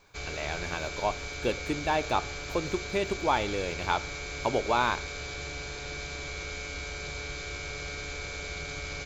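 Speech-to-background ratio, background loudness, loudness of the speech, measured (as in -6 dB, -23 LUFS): 5.5 dB, -36.5 LUFS, -31.0 LUFS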